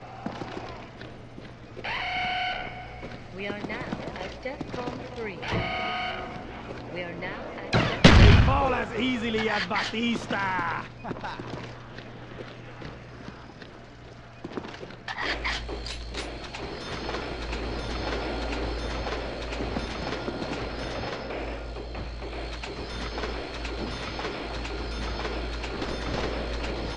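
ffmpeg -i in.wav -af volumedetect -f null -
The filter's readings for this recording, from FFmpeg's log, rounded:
mean_volume: -28.8 dB
max_volume: -4.0 dB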